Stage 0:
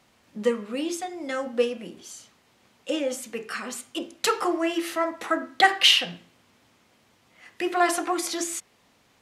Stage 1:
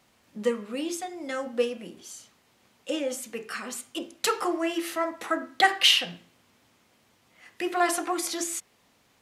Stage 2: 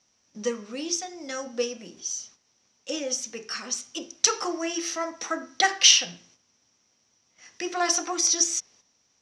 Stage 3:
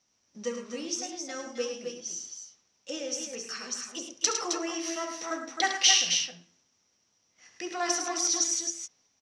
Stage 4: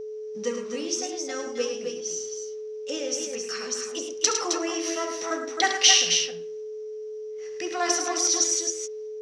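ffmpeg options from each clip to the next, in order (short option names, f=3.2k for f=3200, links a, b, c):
-af "highshelf=f=10k:g=6,volume=-2.5dB"
-af "agate=range=-8dB:threshold=-59dB:ratio=16:detection=peak,lowpass=f=5.8k:t=q:w=15,volume=-2.5dB"
-af "aecho=1:1:69|106|264|276:0.282|0.422|0.447|0.237,volume=-5.5dB"
-af "aeval=exprs='val(0)+0.0141*sin(2*PI*430*n/s)':c=same,volume=4dB"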